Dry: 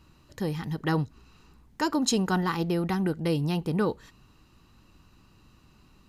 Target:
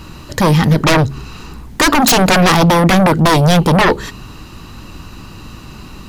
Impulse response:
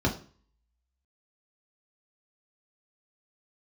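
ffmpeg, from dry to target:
-af "acontrast=55,aeval=exprs='0.473*sin(PI/2*5.62*val(0)/0.473)':c=same,bandreject=f=68.41:t=h:w=4,bandreject=f=136.82:t=h:w=4,bandreject=f=205.23:t=h:w=4,bandreject=f=273.64:t=h:w=4,bandreject=f=342.05:t=h:w=4,bandreject=f=410.46:t=h:w=4"

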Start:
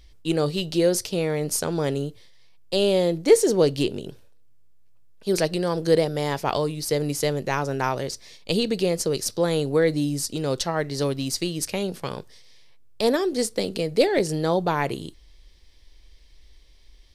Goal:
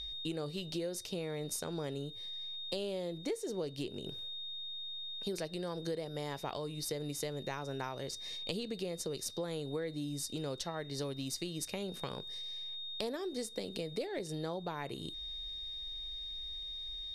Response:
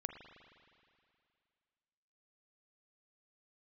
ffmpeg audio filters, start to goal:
-af "aeval=exprs='val(0)+0.0126*sin(2*PI*3700*n/s)':c=same,acompressor=threshold=0.02:ratio=6,volume=0.75"

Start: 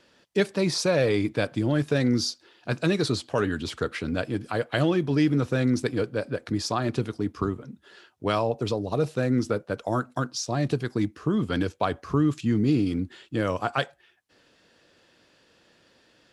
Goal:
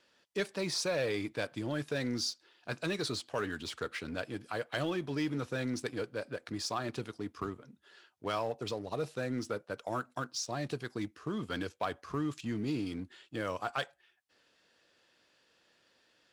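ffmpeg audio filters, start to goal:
-filter_complex "[0:a]lowshelf=f=440:g=-9,asplit=2[s0][s1];[s1]acrusher=bits=5:mix=0:aa=0.5,volume=0.251[s2];[s0][s2]amix=inputs=2:normalize=0,asoftclip=type=tanh:threshold=0.168,volume=0.447"

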